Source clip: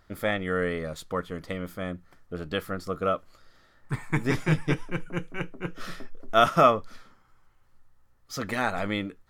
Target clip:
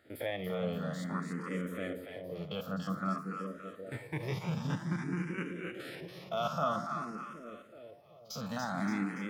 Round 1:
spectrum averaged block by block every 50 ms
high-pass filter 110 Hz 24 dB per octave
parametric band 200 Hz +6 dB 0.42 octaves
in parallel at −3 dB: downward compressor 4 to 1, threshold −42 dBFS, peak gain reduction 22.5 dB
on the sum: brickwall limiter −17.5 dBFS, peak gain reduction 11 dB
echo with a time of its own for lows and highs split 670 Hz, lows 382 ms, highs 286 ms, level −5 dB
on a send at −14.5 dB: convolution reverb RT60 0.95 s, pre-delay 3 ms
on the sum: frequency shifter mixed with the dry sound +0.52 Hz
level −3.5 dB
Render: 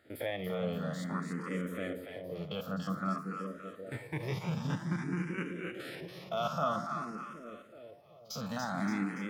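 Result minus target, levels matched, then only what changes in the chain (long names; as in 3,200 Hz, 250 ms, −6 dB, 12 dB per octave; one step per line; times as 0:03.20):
downward compressor: peak gain reduction −5 dB
change: downward compressor 4 to 1, threshold −48.5 dBFS, peak gain reduction 27.5 dB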